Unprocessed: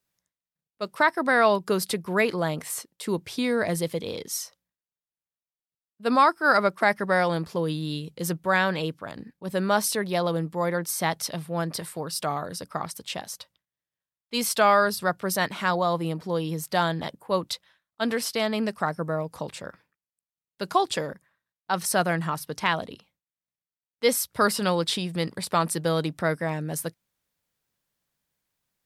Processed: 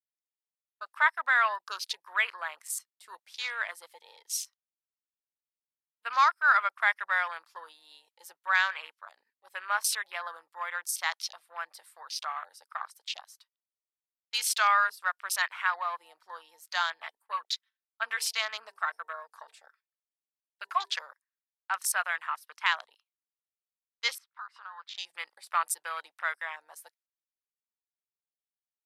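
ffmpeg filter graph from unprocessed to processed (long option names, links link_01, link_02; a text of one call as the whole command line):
ffmpeg -i in.wav -filter_complex "[0:a]asettb=1/sr,asplit=3[link_01][link_02][link_03];[link_01]atrim=end=16.984[link_04];[link_02]atrim=start=16.98:end=20.93,asetpts=PTS-STARTPTS,afade=type=in:duration=0.004:curve=qsin,afade=type=out:start_time=3.946:duration=0.004:curve=qsin,equalizer=frequency=920:width=5.1:gain=-3.5,bandreject=frequency=50:width_type=h:width=6,bandreject=frequency=100:width_type=h:width=6,bandreject=frequency=150:width_type=h:width=6,bandreject=frequency=200:width_type=h:width=6,bandreject=frequency=250:width_type=h:width=6,bandreject=frequency=300:width_type=h:width=6,bandreject=frequency=350:width_type=h:width=6,bandreject=frequency=400:width_type=h:width=6,bandreject=frequency=450:width_type=h:width=6,aecho=1:1:4.5:0.45,atrim=end_sample=174195[link_05];[link_03]atrim=start=20.926[link_06];[link_04][link_05]acrossfade=duration=0.004:curve1=hsin:curve2=qsin[link_07];[link_07][link_06]acrossfade=duration=0.004:curve1=qsin:curve2=hsin,asettb=1/sr,asplit=3[link_08][link_09][link_10];[link_08]atrim=end=24.184[link_11];[link_09]atrim=start=24.18:end=24.98,asetpts=PTS-STARTPTS,afade=type=in:duration=0.004:curve=qsin,afade=type=out:start_time=0.796:duration=0.004:curve=qsin,lowpass=2300,lowshelf=frequency=650:width_type=q:width=1.5:gain=-10.5,acompressor=threshold=-34dB:ratio=8:attack=3.2:release=140:knee=1:detection=peak[link_12];[link_10]atrim=start=24.976[link_13];[link_11][link_12]acrossfade=duration=0.004:curve1=hsin:curve2=qsin[link_14];[link_14][link_13]acrossfade=duration=0.004:curve1=qsin:curve2=hsin,agate=range=-12dB:threshold=-47dB:ratio=16:detection=peak,afwtdn=0.0158,highpass=frequency=1100:width=0.5412,highpass=frequency=1100:width=1.3066" out.wav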